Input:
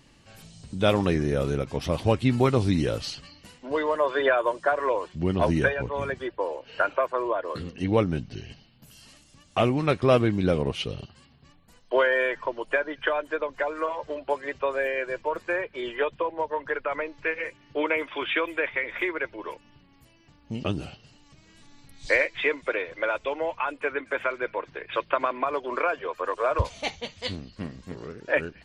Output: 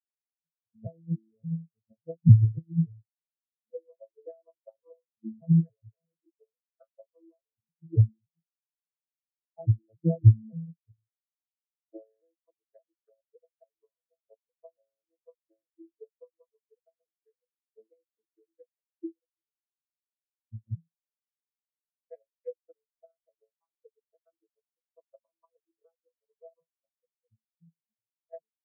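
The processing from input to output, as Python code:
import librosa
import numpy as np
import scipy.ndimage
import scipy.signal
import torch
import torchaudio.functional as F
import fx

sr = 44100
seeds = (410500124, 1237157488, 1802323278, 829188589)

y = fx.vocoder_arp(x, sr, chord='bare fifth', root=45, every_ms=284)
y = fx.transient(y, sr, attack_db=8, sustain_db=3)
y = fx.spectral_expand(y, sr, expansion=4.0)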